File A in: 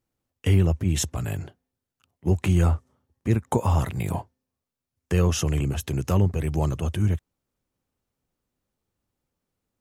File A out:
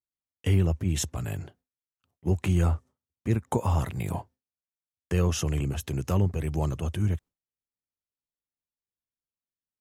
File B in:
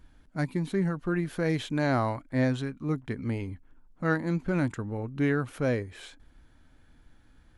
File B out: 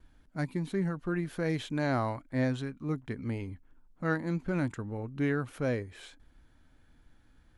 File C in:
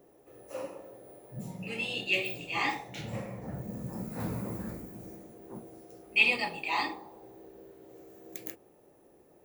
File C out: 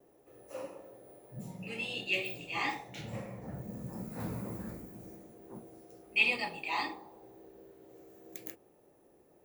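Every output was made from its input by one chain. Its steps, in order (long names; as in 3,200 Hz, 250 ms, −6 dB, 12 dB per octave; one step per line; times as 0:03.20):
noise gate with hold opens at −52 dBFS
level −3.5 dB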